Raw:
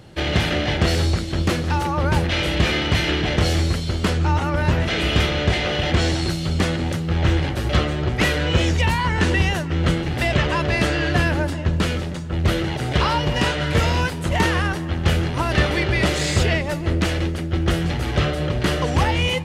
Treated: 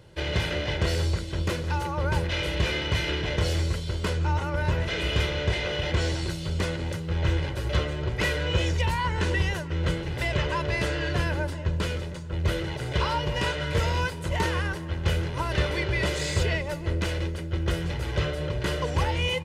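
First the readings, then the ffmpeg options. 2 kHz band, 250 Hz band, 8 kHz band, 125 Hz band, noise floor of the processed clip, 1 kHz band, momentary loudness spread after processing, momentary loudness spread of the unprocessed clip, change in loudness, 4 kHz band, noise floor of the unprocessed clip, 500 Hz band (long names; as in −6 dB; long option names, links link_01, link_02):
−6.5 dB, −10.0 dB, −7.0 dB, −6.5 dB, −34 dBFS, −7.5 dB, 4 LU, 3 LU, −7.0 dB, −7.0 dB, −27 dBFS, −6.0 dB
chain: -af "aecho=1:1:2:0.49,volume=-8dB"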